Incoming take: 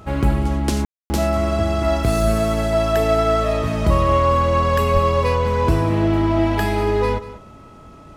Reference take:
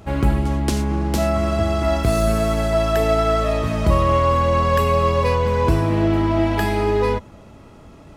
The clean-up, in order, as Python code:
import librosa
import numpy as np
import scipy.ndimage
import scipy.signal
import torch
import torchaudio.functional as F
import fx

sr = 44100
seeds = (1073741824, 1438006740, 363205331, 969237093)

y = fx.notch(x, sr, hz=1300.0, q=30.0)
y = fx.highpass(y, sr, hz=140.0, slope=24, at=(4.93, 5.05), fade=0.02)
y = fx.fix_ambience(y, sr, seeds[0], print_start_s=7.55, print_end_s=8.05, start_s=0.85, end_s=1.1)
y = fx.fix_echo_inverse(y, sr, delay_ms=191, level_db=-16.0)